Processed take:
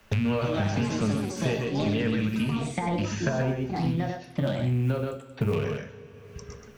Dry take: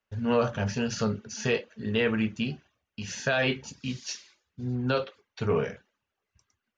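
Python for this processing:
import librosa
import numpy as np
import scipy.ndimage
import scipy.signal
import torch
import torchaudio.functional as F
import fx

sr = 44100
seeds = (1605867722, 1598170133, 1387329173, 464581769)

y = fx.rattle_buzz(x, sr, strikes_db=-34.0, level_db=-28.0)
y = fx.lowpass(y, sr, hz=1000.0, slope=12, at=(3.29, 5.53))
y = fx.quant_float(y, sr, bits=6)
y = fx.low_shelf(y, sr, hz=200.0, db=10.5)
y = y + 10.0 ** (-5.5 / 20.0) * np.pad(y, (int(129 * sr / 1000.0), 0))[:len(y)]
y = fx.rev_double_slope(y, sr, seeds[0], early_s=0.62, late_s=1.9, knee_db=-16, drr_db=11.5)
y = fx.echo_pitch(y, sr, ms=328, semitones=5, count=3, db_per_echo=-6.0)
y = fx.band_squash(y, sr, depth_pct=100)
y = y * 10.0 ** (-4.5 / 20.0)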